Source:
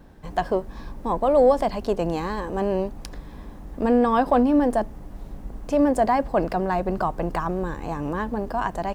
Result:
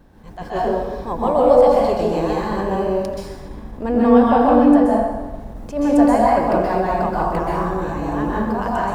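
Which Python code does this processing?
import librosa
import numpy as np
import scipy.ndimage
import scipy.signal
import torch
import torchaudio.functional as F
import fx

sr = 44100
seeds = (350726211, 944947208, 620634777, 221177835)

y = fx.high_shelf(x, sr, hz=5000.0, db=-5.5, at=(3.19, 5.4))
y = fx.rev_plate(y, sr, seeds[0], rt60_s=1.3, hf_ratio=0.75, predelay_ms=115, drr_db=-5.5)
y = fx.attack_slew(y, sr, db_per_s=180.0)
y = y * librosa.db_to_amplitude(-1.5)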